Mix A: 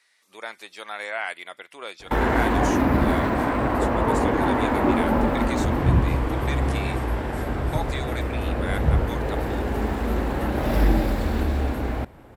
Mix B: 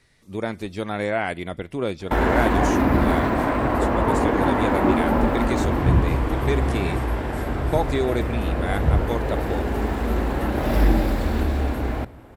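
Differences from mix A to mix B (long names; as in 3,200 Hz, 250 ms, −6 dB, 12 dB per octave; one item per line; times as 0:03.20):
speech: remove high-pass filter 1,000 Hz 12 dB per octave
reverb: on, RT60 0.75 s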